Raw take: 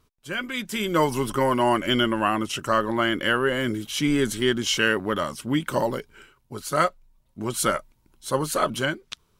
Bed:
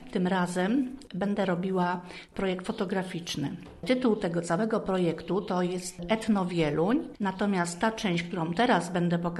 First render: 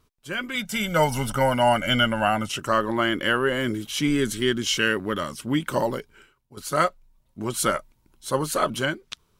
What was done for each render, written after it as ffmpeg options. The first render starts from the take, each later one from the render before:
-filter_complex "[0:a]asettb=1/sr,asplit=3[a][b][c];[a]atrim=end=0.554[d];[b]atrim=start=0.55:end=2.49,asetpts=PTS-STARTPTS,afade=t=in:d=0.004:c=qsin,afade=t=out:st=1.936:d=0.004:c=qsin,aecho=1:1:1.4:0.83,atrim=end_sample=85554[e];[c]atrim=start=2.486[f];[d][e]acrossfade=d=0.004:c1=hsin:c2=qsin[g];[g][f]acrossfade=d=0.004:c1=qsin:c2=hsin,asettb=1/sr,asplit=3[h][i][j];[h]atrim=end=4.094[k];[i]atrim=start=4.09:end=5.4,asetpts=PTS-STARTPTS,afade=t=in:d=0.004:c=qsin,afade=t=out:st=1.306:d=0.004:c=qsin,equalizer=f=780:w=1.5:g=-6[l];[j]atrim=start=5.396[m];[k][l]acrossfade=d=0.004:c1=hsin:c2=qsin[n];[n][m]acrossfade=d=0.004:c1=qsin:c2=hsin,asplit=2[o][p];[o]atrim=end=6.57,asetpts=PTS-STARTPTS,afade=t=out:st=5.92:d=0.65:silence=0.223872[q];[p]atrim=start=6.57,asetpts=PTS-STARTPTS,afade=t=in:d=0.004:c=hsin:silence=0.223872[r];[q][r]concat=n=2:v=0:a=1"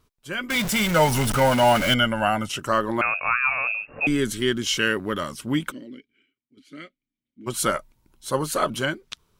-filter_complex "[0:a]asettb=1/sr,asplit=3[a][b][c];[a]atrim=end=0.504[d];[b]atrim=start=0.5:end=1.94,asetpts=PTS-STARTPTS,afade=t=in:d=0.004:c=qsin,afade=t=out:st=1.436:d=0.004:c=qsin,aeval=exprs='val(0)+0.5*0.075*sgn(val(0))':c=same[e];[c]atrim=start=1.936[f];[d][e]acrossfade=d=0.004:c1=hsin:c2=qsin[g];[g][f]acrossfade=d=0.004:c1=qsin:c2=hsin,asettb=1/sr,asplit=3[h][i][j];[h]atrim=end=3.014[k];[i]atrim=start=3.01:end=4.07,asetpts=PTS-STARTPTS,afade=t=in:d=0.004:c=qsin,afade=t=out:st=1.056:d=0.004:c=qsin,lowpass=f=2.4k:t=q:w=0.5098,lowpass=f=2.4k:t=q:w=0.6013,lowpass=f=2.4k:t=q:w=0.9,lowpass=f=2.4k:t=q:w=2.563,afreqshift=-2800[l];[j]atrim=start=4.066[m];[k][l]acrossfade=d=0.004:c1=hsin:c2=qsin[n];[n][m]acrossfade=d=0.004:c1=qsin:c2=hsin,asplit=3[o][p][q];[o]afade=t=out:st=5.7:d=0.02[r];[p]asplit=3[s][t][u];[s]bandpass=f=270:t=q:w=8,volume=0dB[v];[t]bandpass=f=2.29k:t=q:w=8,volume=-6dB[w];[u]bandpass=f=3.01k:t=q:w=8,volume=-9dB[x];[v][w][x]amix=inputs=3:normalize=0,afade=t=in:st=5.7:d=0.02,afade=t=out:st=7.46:d=0.02[y];[q]afade=t=in:st=7.46:d=0.02[z];[r][y][z]amix=inputs=3:normalize=0"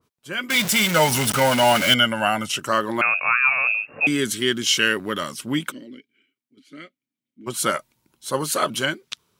-af "highpass=120,adynamicequalizer=threshold=0.0224:dfrequency=1700:dqfactor=0.7:tfrequency=1700:tqfactor=0.7:attack=5:release=100:ratio=0.375:range=3:mode=boostabove:tftype=highshelf"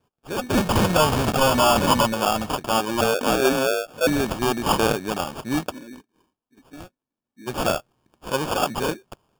-af "acrusher=samples=22:mix=1:aa=0.000001,aeval=exprs='0.316*(abs(mod(val(0)/0.316+3,4)-2)-1)':c=same"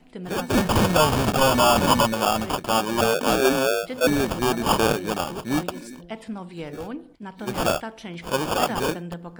-filter_complex "[1:a]volume=-8dB[a];[0:a][a]amix=inputs=2:normalize=0"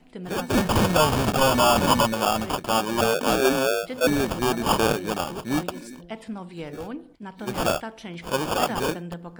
-af "volume=-1dB"

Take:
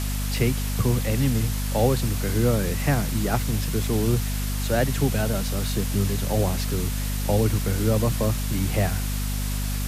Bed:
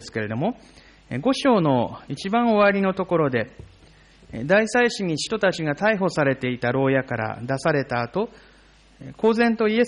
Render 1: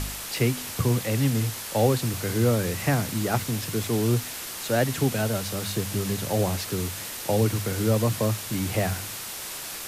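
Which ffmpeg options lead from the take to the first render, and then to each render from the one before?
-af "bandreject=f=50:t=h:w=4,bandreject=f=100:t=h:w=4,bandreject=f=150:t=h:w=4,bandreject=f=200:t=h:w=4,bandreject=f=250:t=h:w=4"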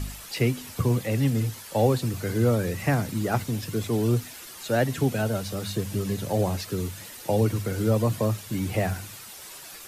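-af "afftdn=nr=10:nf=-36"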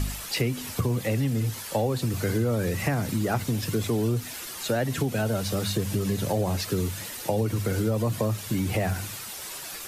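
-filter_complex "[0:a]asplit=2[a][b];[b]alimiter=limit=-20.5dB:level=0:latency=1:release=19,volume=-2dB[c];[a][c]amix=inputs=2:normalize=0,acompressor=threshold=-22dB:ratio=6"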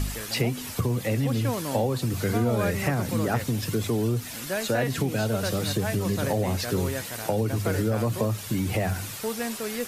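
-filter_complex "[1:a]volume=-12.5dB[a];[0:a][a]amix=inputs=2:normalize=0"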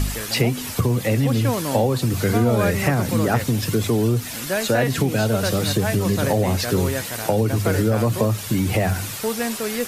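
-af "volume=6dB"

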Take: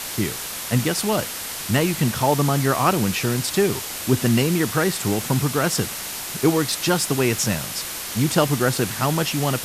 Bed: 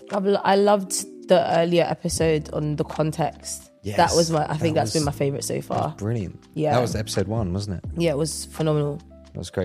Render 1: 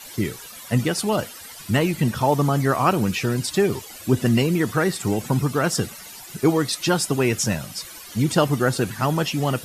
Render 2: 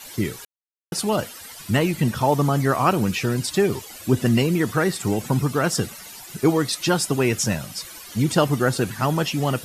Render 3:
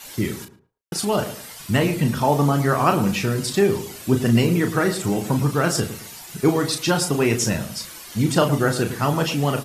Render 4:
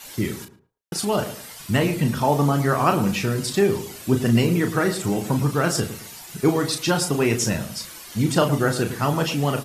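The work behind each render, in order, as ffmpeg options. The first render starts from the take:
-af "afftdn=nr=15:nf=-31"
-filter_complex "[0:a]asplit=3[a][b][c];[a]atrim=end=0.45,asetpts=PTS-STARTPTS,afade=t=out:st=0.446:d=0.004:c=hsin[d];[b]atrim=start=0.45:end=0.92,asetpts=PTS-STARTPTS,volume=0[e];[c]atrim=start=0.92,asetpts=PTS-STARTPTS,afade=t=in:d=0.004:c=hsin[f];[d][e][f]concat=n=3:v=0:a=1"
-filter_complex "[0:a]asplit=2[a][b];[b]adelay=35,volume=-7dB[c];[a][c]amix=inputs=2:normalize=0,asplit=2[d][e];[e]adelay=110,lowpass=f=1k:p=1,volume=-10.5dB,asplit=2[f][g];[g]adelay=110,lowpass=f=1k:p=1,volume=0.31,asplit=2[h][i];[i]adelay=110,lowpass=f=1k:p=1,volume=0.31[j];[d][f][h][j]amix=inputs=4:normalize=0"
-af "volume=-1dB"

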